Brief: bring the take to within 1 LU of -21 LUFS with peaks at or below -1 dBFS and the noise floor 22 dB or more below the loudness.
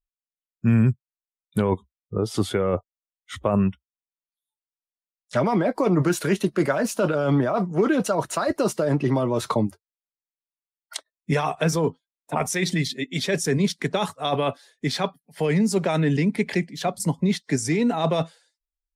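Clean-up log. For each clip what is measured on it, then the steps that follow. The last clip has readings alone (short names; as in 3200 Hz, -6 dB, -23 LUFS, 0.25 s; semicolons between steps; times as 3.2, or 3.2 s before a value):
loudness -24.0 LUFS; peak -9.5 dBFS; loudness target -21.0 LUFS
-> gain +3 dB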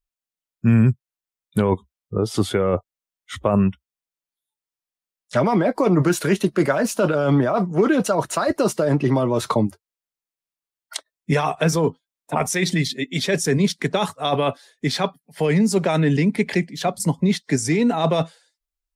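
loudness -21.0 LUFS; peak -6.5 dBFS; noise floor -92 dBFS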